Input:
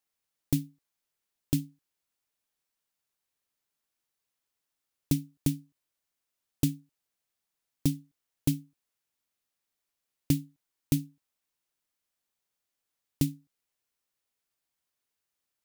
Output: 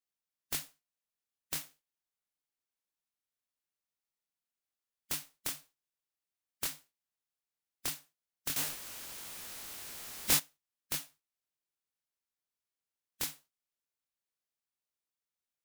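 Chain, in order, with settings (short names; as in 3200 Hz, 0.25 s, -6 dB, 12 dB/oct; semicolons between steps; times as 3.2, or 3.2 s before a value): spectral contrast lowered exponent 0.13; 8.56–10.37 power-law curve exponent 0.35; detuned doubles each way 59 cents; gain -5.5 dB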